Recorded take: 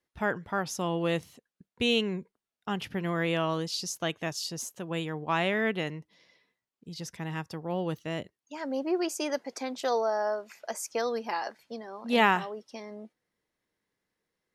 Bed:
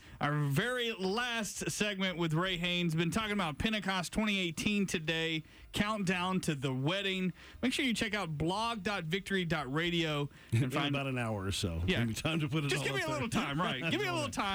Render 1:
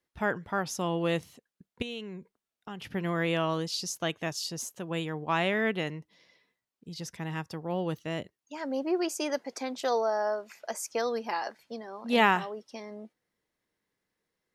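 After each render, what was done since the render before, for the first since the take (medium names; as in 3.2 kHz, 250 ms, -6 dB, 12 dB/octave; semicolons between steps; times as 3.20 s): 1.82–2.85 s: compression 2.5:1, threshold -41 dBFS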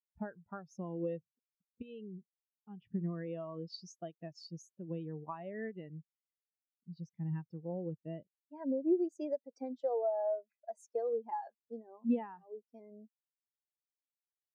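compression 12:1, threshold -32 dBFS, peak gain reduction 15.5 dB; spectral contrast expander 2.5:1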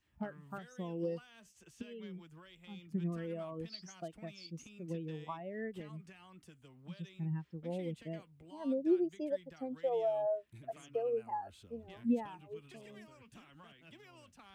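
add bed -24.5 dB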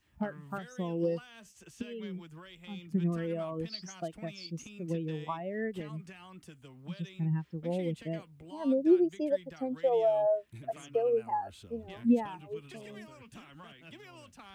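trim +6.5 dB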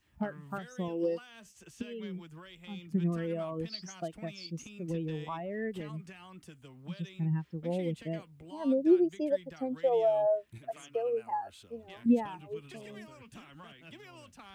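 0.88–1.30 s: brick-wall FIR high-pass 180 Hz; 4.88–5.94 s: transient shaper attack -6 dB, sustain +2 dB; 10.58–12.06 s: bass shelf 350 Hz -10 dB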